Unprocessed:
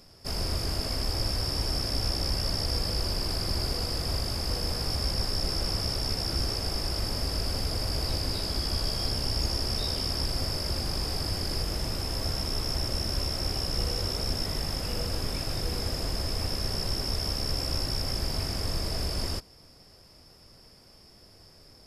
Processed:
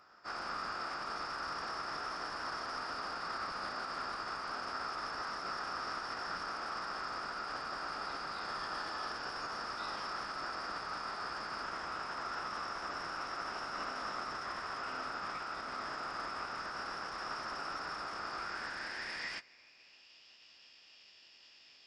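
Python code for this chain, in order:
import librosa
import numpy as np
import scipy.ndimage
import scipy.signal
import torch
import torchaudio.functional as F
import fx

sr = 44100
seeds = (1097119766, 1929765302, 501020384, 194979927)

y = np.minimum(x, 2.0 * 10.0 ** (-27.5 / 20.0) - x)
y = fx.filter_sweep_bandpass(y, sr, from_hz=1300.0, to_hz=2900.0, start_s=18.33, end_s=20.12, q=4.7)
y = fx.pitch_keep_formants(y, sr, semitones=-11.0)
y = y * 10.0 ** (13.0 / 20.0)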